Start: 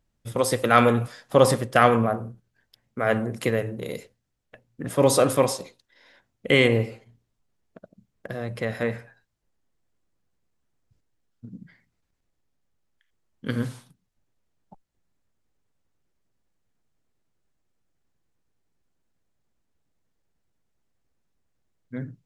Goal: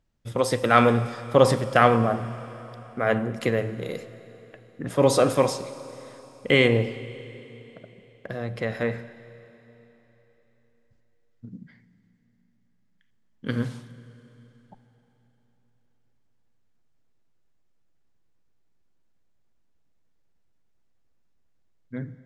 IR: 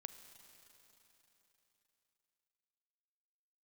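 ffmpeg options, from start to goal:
-filter_complex "[0:a]asplit=2[a][b];[1:a]atrim=start_sample=2205,lowpass=8k[c];[b][c]afir=irnorm=-1:irlink=0,volume=7dB[d];[a][d]amix=inputs=2:normalize=0,volume=-7dB"

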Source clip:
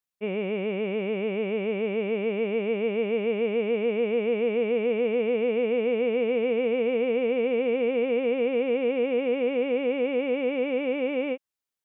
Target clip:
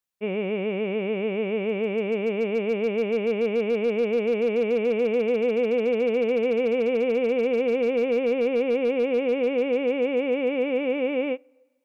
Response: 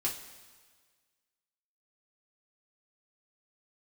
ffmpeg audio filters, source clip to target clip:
-filter_complex "[0:a]asoftclip=type=hard:threshold=-18dB,asplit=2[a][b];[1:a]atrim=start_sample=2205,asetrate=43659,aresample=44100,lowpass=2.3k[c];[b][c]afir=irnorm=-1:irlink=0,volume=-25dB[d];[a][d]amix=inputs=2:normalize=0,volume=1.5dB"

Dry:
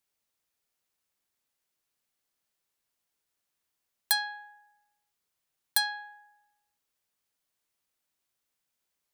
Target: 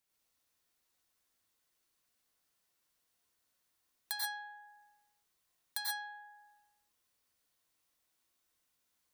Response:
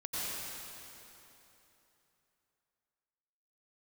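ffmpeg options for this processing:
-filter_complex "[0:a]acompressor=threshold=-57dB:ratio=1.5[a];[1:a]atrim=start_sample=2205,atrim=end_sample=6174[b];[a][b]afir=irnorm=-1:irlink=0,volume=3.5dB"

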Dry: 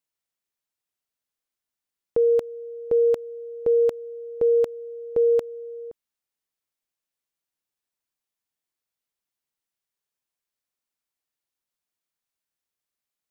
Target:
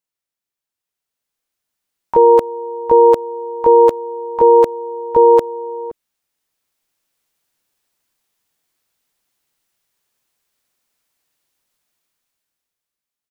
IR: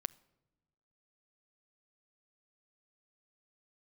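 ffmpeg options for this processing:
-filter_complex "[0:a]asplit=3[a][b][c];[b]asetrate=33038,aresample=44100,atempo=1.33484,volume=-13dB[d];[c]asetrate=88200,aresample=44100,atempo=0.5,volume=-6dB[e];[a][d][e]amix=inputs=3:normalize=0,dynaudnorm=f=120:g=21:m=15dB"

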